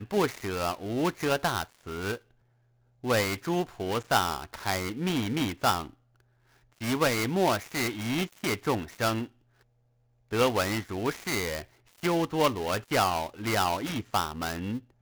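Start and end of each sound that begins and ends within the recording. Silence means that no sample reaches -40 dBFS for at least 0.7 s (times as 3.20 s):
3.04–5.90 s
6.81–9.26 s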